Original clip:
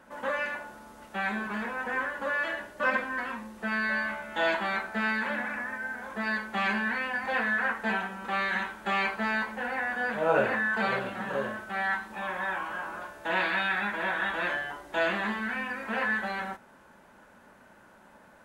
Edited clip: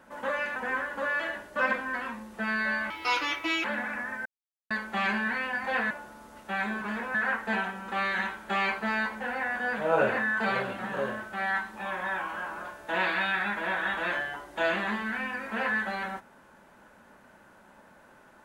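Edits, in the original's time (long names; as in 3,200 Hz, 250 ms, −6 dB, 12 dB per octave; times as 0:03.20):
0:00.56–0:01.80: move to 0:07.51
0:04.14–0:05.25: play speed 149%
0:05.86–0:06.31: silence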